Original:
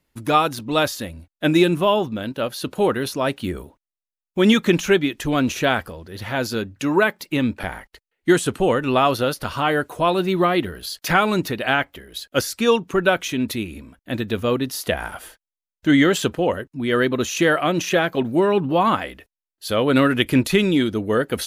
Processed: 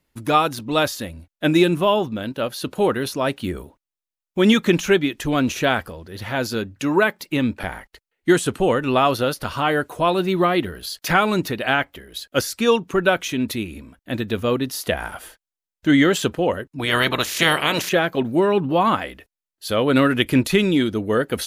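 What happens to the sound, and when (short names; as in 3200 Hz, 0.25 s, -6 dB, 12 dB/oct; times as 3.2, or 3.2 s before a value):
16.78–17.88 spectral limiter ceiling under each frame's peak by 22 dB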